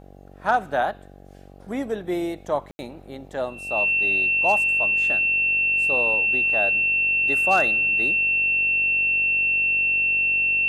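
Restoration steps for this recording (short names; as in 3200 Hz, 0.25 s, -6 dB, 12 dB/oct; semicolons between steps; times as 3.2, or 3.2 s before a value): clip repair -10.5 dBFS; de-hum 47.4 Hz, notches 17; notch 2700 Hz, Q 30; room tone fill 2.71–2.79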